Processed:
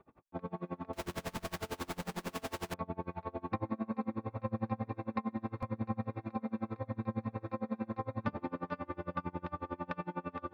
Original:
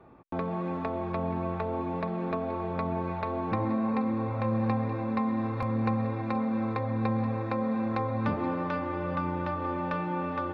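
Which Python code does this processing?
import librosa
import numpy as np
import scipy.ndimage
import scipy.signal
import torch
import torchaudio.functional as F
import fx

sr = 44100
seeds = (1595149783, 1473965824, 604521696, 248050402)

y = fx.clip_1bit(x, sr, at=(0.93, 2.74))
y = y * 10.0 ** (-30 * (0.5 - 0.5 * np.cos(2.0 * np.pi * 11.0 * np.arange(len(y)) / sr)) / 20.0)
y = F.gain(torch.from_numpy(y), -3.0).numpy()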